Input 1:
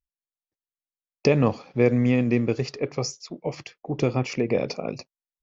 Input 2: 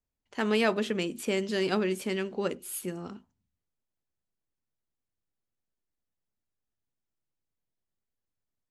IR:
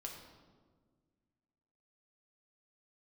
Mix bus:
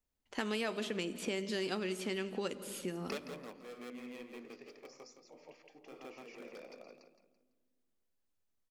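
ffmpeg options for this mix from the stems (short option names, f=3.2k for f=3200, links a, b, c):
-filter_complex "[0:a]acrossover=split=200 2500:gain=0.0891 1 0.1[a][b][c];[a][b][c]amix=inputs=3:normalize=0,volume=18dB,asoftclip=hard,volume=-18dB,crystalizer=i=9:c=0,adelay=1850,volume=-16.5dB,asplit=3[d][e][f];[e]volume=-10.5dB[g];[f]volume=-11dB[h];[1:a]volume=-0.5dB,asplit=4[i][j][k][l];[j]volume=-7.5dB[m];[k]volume=-19.5dB[n];[l]apad=whole_len=320853[o];[d][o]sidechaingate=range=-33dB:threshold=-43dB:ratio=16:detection=peak[p];[2:a]atrim=start_sample=2205[q];[g][m]amix=inputs=2:normalize=0[r];[r][q]afir=irnorm=-1:irlink=0[s];[h][n]amix=inputs=2:normalize=0,aecho=0:1:167|334|501|668|835:1|0.33|0.109|0.0359|0.0119[t];[p][i][s][t]amix=inputs=4:normalize=0,equalizer=f=120:t=o:w=0.39:g=-11.5,acrossover=split=2600|7000[u][v][w];[u]acompressor=threshold=-36dB:ratio=4[x];[v]acompressor=threshold=-44dB:ratio=4[y];[w]acompressor=threshold=-57dB:ratio=4[z];[x][y][z]amix=inputs=3:normalize=0"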